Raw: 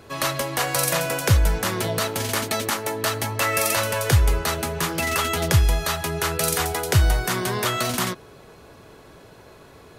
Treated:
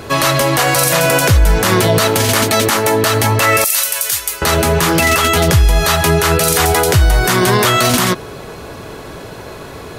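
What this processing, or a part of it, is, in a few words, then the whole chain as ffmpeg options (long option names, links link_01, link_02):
loud club master: -filter_complex "[0:a]asettb=1/sr,asplit=3[link_01][link_02][link_03];[link_01]atrim=end=3.644[link_04];[link_02]atrim=start=3.64:end=4.42,asetpts=PTS-STARTPTS,afade=type=in:duration=0.004:curve=qsin,afade=type=out:start_time=0.776:duration=0.004:curve=qsin,aderivative[link_05];[link_03]atrim=start=4.416[link_06];[link_04][link_05]acrossfade=duration=0.004:curve1=hsin:curve2=qsin[link_07];[link_07][link_06]acrossfade=duration=0.004:curve1=qsin:curve2=hsin,acompressor=threshold=-22dB:ratio=2,asoftclip=type=hard:threshold=-10.5dB,alimiter=level_in=18.5dB:limit=-1dB:release=50:level=0:latency=1,volume=-2dB"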